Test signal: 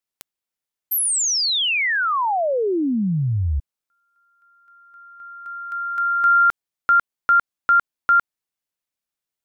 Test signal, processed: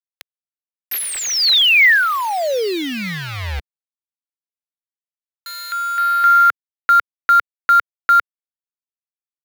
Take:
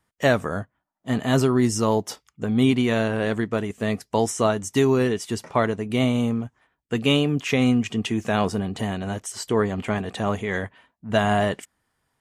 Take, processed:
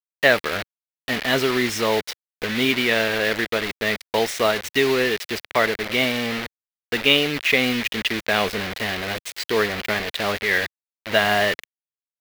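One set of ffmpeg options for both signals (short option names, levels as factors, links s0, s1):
-af "acrusher=bits=4:mix=0:aa=0.000001,equalizer=f=125:t=o:w=1:g=-10,equalizer=f=250:t=o:w=1:g=-4,equalizer=f=500:t=o:w=1:g=3,equalizer=f=1000:t=o:w=1:g=-3,equalizer=f=2000:t=o:w=1:g=10,equalizer=f=4000:t=o:w=1:g=7,equalizer=f=8000:t=o:w=1:g=-7"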